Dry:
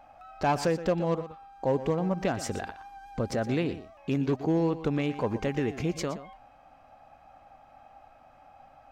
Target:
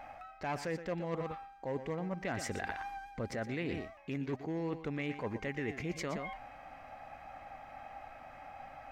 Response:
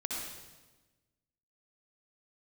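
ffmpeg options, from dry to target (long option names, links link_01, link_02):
-af "equalizer=frequency=2000:width_type=o:width=0.54:gain=11,areverse,acompressor=threshold=-40dB:ratio=5,areverse,volume=4dB"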